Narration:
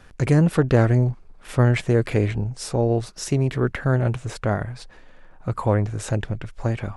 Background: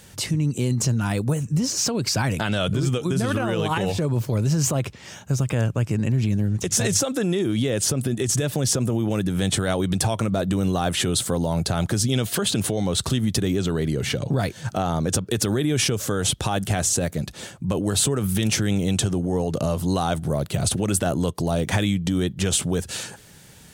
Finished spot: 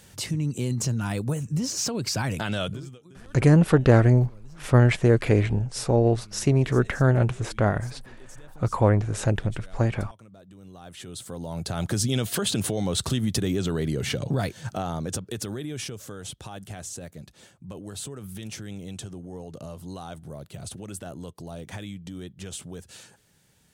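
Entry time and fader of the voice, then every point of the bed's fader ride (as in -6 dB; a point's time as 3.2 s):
3.15 s, +0.5 dB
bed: 2.63 s -4.5 dB
3.02 s -27 dB
10.51 s -27 dB
11.94 s -3 dB
14.39 s -3 dB
16.23 s -15.5 dB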